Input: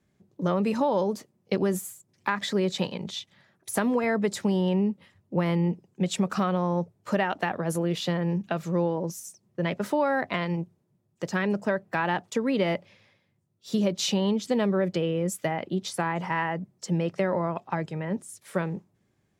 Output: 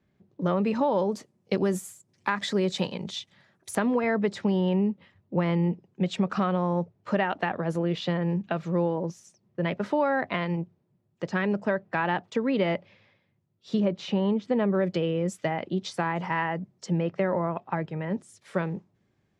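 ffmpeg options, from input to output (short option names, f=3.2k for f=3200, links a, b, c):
-af "asetnsamples=n=441:p=0,asendcmd='1.12 lowpass f 9200;3.75 lowpass f 3800;13.8 lowpass f 2100;14.75 lowpass f 5500;16.92 lowpass f 2800;18 lowpass f 5400',lowpass=3.9k"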